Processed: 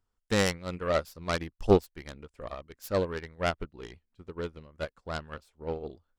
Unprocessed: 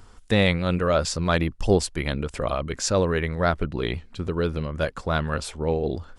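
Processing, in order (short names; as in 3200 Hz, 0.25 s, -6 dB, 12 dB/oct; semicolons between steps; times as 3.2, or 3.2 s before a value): self-modulated delay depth 0.18 ms; dynamic EQ 130 Hz, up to -4 dB, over -37 dBFS, Q 0.88; upward expander 2.5:1, over -38 dBFS; gain +1 dB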